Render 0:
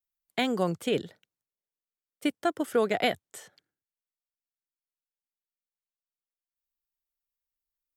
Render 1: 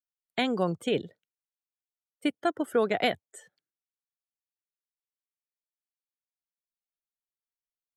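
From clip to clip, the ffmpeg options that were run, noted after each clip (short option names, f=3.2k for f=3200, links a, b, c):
-af "afftdn=nr=16:nf=-46"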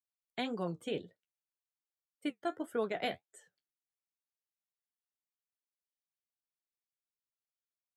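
-af "flanger=delay=9.1:depth=5.7:regen=-45:speed=1.8:shape=sinusoidal,volume=-5.5dB"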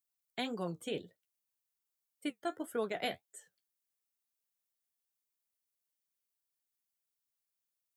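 -af "crystalizer=i=1.5:c=0,volume=-1.5dB"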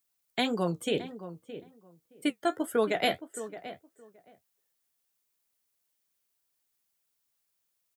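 -filter_complex "[0:a]asplit=2[a][b];[b]adelay=619,lowpass=f=1.5k:p=1,volume=-12.5dB,asplit=2[c][d];[d]adelay=619,lowpass=f=1.5k:p=1,volume=0.17[e];[a][c][e]amix=inputs=3:normalize=0,volume=9dB"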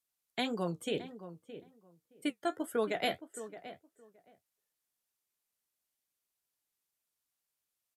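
-af "aresample=32000,aresample=44100,volume=-5.5dB"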